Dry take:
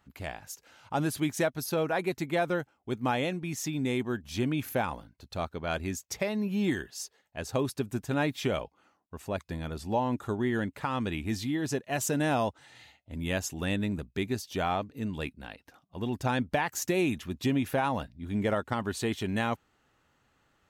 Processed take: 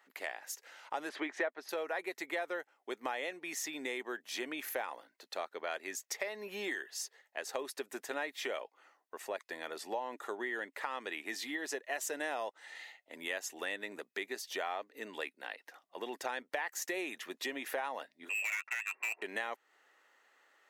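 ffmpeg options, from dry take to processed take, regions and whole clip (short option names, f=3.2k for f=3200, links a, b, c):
-filter_complex "[0:a]asettb=1/sr,asplit=3[a][b][c];[a]atrim=end=1.094[d];[b]atrim=start=1.09:end=1.69,asetpts=PTS-STARTPTS,afade=t=in:d=0.004:c=qsin,afade=t=out:st=0.596:d=0.004:c=qsin,acontrast=83,highpass=220,lowpass=2.3k[e];[c]atrim=start=1.686[f];[d][e]acrossfade=d=0.004:c1=hsin:c2=qsin[g];[g][f]acrossfade=d=0.004:c1=qsin:c2=hsin,asettb=1/sr,asplit=3[h][i][j];[h]atrim=end=18.294[k];[i]atrim=start=18.29:end=19.22,asetpts=PTS-STARTPTS,afade=t=in:d=0.004:c=qsin,afade=t=out:st=0.926:d=0.004:c=qsin,lowpass=f=2.4k:t=q:w=0.5098,lowpass=f=2.4k:t=q:w=0.6013,lowpass=f=2.4k:t=q:w=0.9,lowpass=f=2.4k:t=q:w=2.563,afreqshift=-2800,adynamicsmooth=sensitivity=7:basefreq=1.3k,asoftclip=type=hard:threshold=-26.5dB[l];[j]atrim=start=19.216[m];[k][l]acrossfade=d=0.004:c1=hsin:c2=qsin[n];[n][m]acrossfade=d=0.004:c1=qsin:c2=hsin,highpass=f=400:w=0.5412,highpass=f=400:w=1.3066,equalizer=f=1.9k:t=o:w=0.28:g=9.5,acompressor=threshold=-38dB:ratio=3,volume=1dB"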